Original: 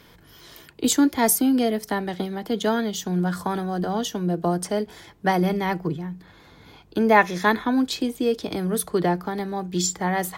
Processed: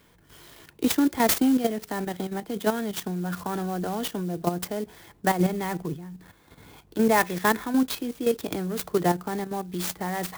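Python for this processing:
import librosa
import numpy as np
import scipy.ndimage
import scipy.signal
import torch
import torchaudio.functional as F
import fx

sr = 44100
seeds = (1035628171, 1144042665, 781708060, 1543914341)

y = fx.level_steps(x, sr, step_db=10)
y = fx.clock_jitter(y, sr, seeds[0], jitter_ms=0.041)
y = y * 10.0 ** (1.0 / 20.0)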